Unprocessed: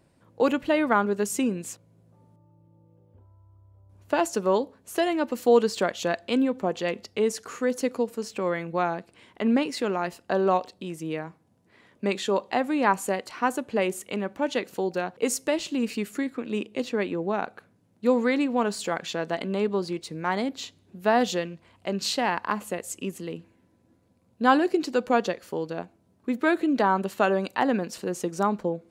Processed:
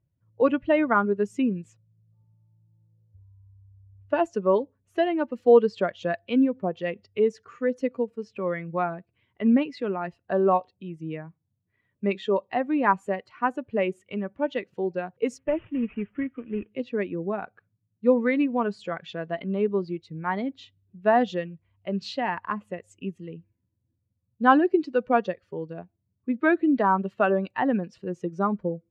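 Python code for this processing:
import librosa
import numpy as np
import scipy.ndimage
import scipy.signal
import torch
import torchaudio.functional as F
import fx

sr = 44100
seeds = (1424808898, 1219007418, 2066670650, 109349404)

y = fx.cvsd(x, sr, bps=16000, at=(15.38, 16.73))
y = fx.bin_expand(y, sr, power=1.5)
y = scipy.signal.sosfilt(scipy.signal.butter(2, 2300.0, 'lowpass', fs=sr, output='sos'), y)
y = fx.notch(y, sr, hz=840.0, q=13.0)
y = y * 10.0 ** (4.0 / 20.0)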